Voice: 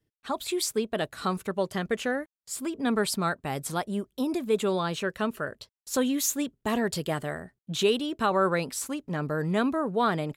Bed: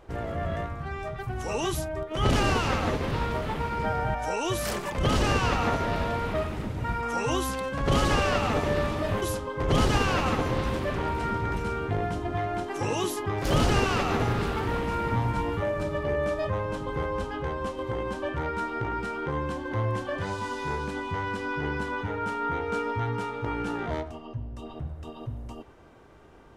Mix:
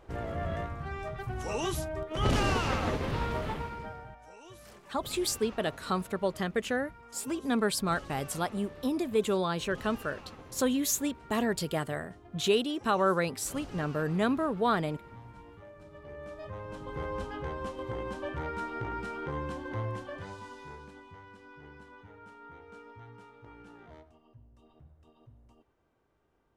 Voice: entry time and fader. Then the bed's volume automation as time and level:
4.65 s, −2.0 dB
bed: 0:03.50 −3.5 dB
0:04.18 −22.5 dB
0:15.78 −22.5 dB
0:17.10 −5.5 dB
0:19.69 −5.5 dB
0:21.27 −21 dB

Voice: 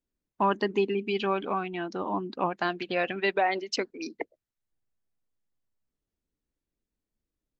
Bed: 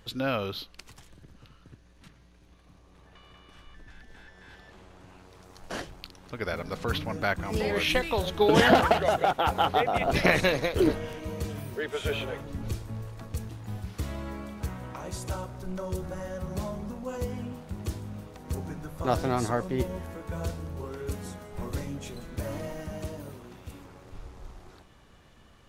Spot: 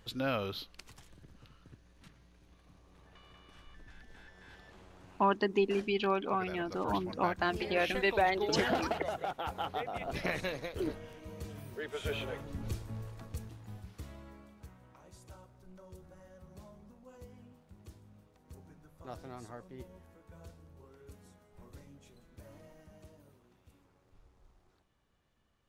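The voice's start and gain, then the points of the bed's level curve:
4.80 s, −3.0 dB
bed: 0:05.16 −4.5 dB
0:05.41 −12.5 dB
0:11.11 −12.5 dB
0:12.31 −5 dB
0:13.08 −5 dB
0:14.79 −19.5 dB

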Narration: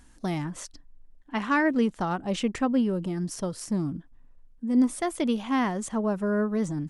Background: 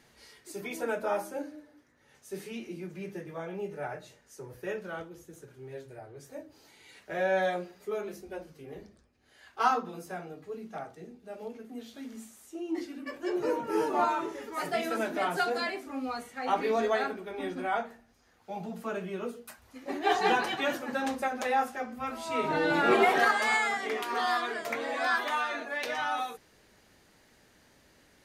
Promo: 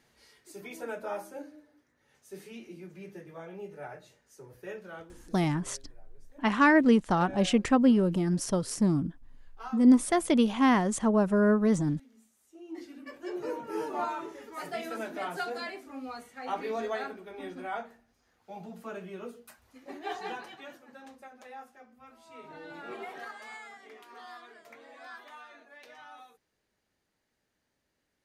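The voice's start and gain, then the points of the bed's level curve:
5.10 s, +2.5 dB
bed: 0:05.46 −5.5 dB
0:05.85 −16.5 dB
0:12.32 −16.5 dB
0:12.90 −5.5 dB
0:19.69 −5.5 dB
0:20.81 −18.5 dB

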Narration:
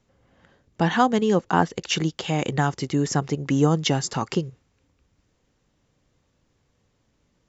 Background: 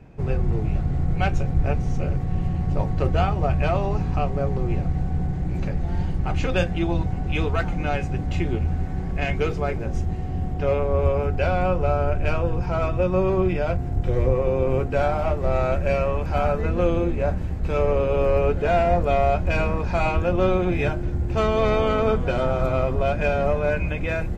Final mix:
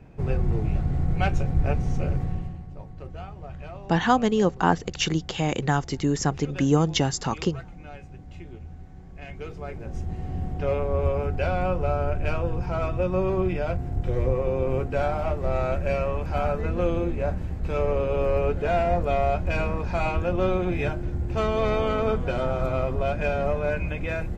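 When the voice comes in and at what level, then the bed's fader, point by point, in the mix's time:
3.10 s, −1.0 dB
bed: 0:02.25 −1.5 dB
0:02.70 −17.5 dB
0:09.09 −17.5 dB
0:10.27 −3.5 dB

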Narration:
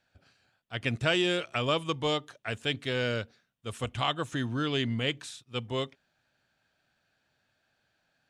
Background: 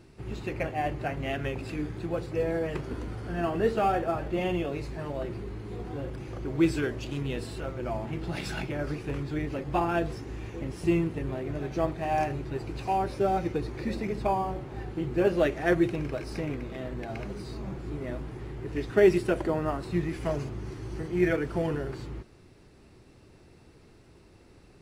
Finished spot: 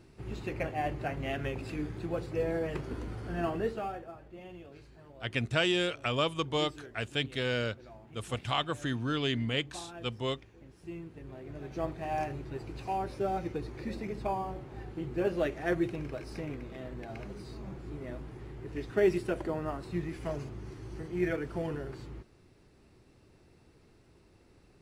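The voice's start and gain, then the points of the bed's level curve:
4.50 s, −1.5 dB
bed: 0:03.49 −3 dB
0:04.17 −19 dB
0:10.84 −19 dB
0:11.87 −6 dB

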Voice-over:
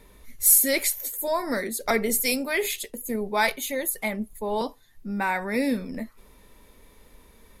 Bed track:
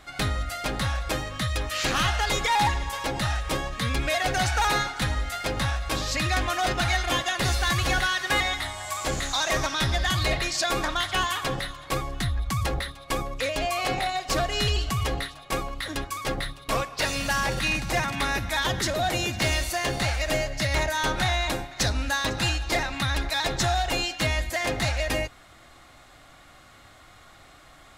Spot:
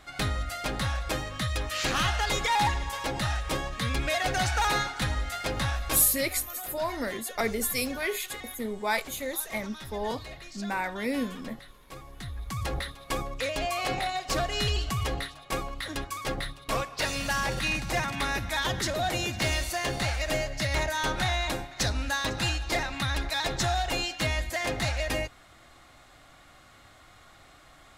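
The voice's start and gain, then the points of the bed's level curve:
5.50 s, −5.0 dB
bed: 0:05.94 −2.5 dB
0:06.32 −18 dB
0:11.88 −18 dB
0:12.78 −3 dB

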